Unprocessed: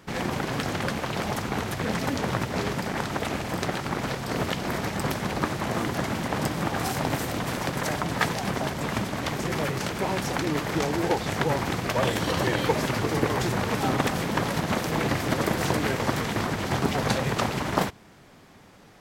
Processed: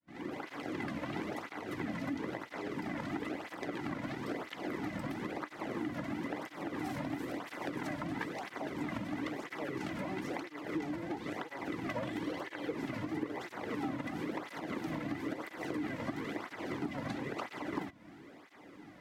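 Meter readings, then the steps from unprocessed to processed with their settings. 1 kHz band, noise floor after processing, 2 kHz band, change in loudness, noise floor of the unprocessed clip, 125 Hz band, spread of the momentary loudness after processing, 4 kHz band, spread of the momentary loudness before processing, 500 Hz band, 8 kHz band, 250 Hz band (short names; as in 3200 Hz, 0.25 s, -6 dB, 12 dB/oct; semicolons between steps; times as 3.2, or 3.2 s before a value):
-14.0 dB, -55 dBFS, -12.5 dB, -12.5 dB, -51 dBFS, -17.0 dB, 3 LU, -17.5 dB, 4 LU, -13.0 dB, -22.0 dB, -9.0 dB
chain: opening faded in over 1.02 s; low shelf 130 Hz +5 dB; small resonant body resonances 300/2000 Hz, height 11 dB, ringing for 45 ms; compressor 10:1, threshold -30 dBFS, peak gain reduction 18.5 dB; tone controls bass -4 dB, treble -9 dB; tape flanging out of phase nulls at 1 Hz, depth 2.7 ms; gain -1 dB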